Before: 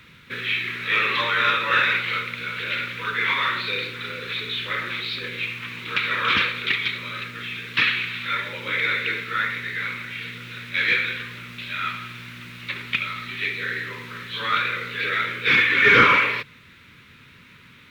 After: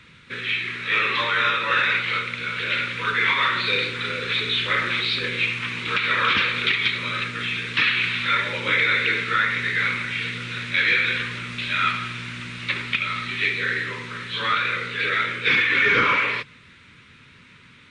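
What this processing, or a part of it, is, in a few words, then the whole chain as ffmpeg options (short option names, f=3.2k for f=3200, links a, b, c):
low-bitrate web radio: -af "dynaudnorm=f=510:g=11:m=8.5dB,alimiter=limit=-9.5dB:level=0:latency=1:release=182" -ar 22050 -c:a libmp3lame -b:a 48k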